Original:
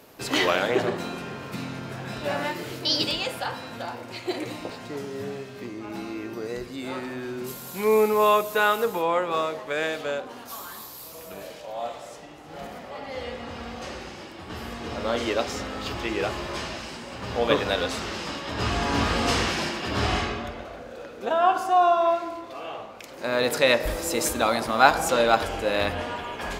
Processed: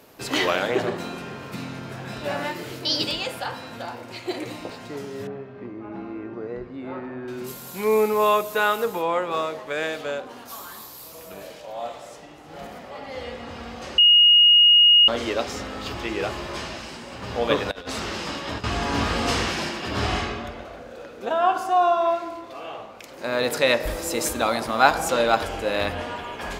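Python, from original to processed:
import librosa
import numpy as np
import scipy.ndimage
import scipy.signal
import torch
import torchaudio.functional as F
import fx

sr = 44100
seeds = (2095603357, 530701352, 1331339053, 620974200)

y = fx.lowpass(x, sr, hz=1500.0, slope=12, at=(5.27, 7.28))
y = fx.over_compress(y, sr, threshold_db=-31.0, ratio=-0.5, at=(17.71, 18.64))
y = fx.edit(y, sr, fx.bleep(start_s=13.98, length_s=1.1, hz=2870.0, db=-10.5), tone=tone)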